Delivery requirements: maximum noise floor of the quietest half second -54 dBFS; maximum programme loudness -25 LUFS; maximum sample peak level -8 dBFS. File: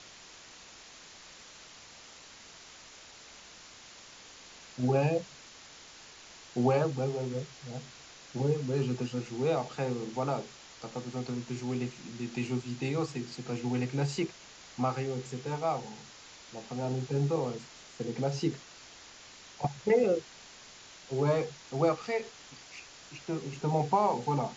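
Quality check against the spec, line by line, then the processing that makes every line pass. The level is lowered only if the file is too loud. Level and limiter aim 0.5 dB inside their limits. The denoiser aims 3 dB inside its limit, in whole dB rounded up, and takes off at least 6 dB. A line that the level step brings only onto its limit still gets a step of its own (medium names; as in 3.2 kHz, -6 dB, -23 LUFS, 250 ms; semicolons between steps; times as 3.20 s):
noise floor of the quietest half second -52 dBFS: fail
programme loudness -32.5 LUFS: pass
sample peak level -15.0 dBFS: pass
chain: noise reduction 6 dB, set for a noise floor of -52 dBFS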